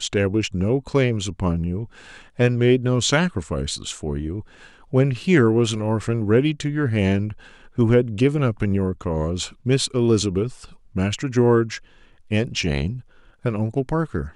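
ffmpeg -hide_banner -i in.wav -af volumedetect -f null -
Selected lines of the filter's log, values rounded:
mean_volume: -21.4 dB
max_volume: -4.8 dB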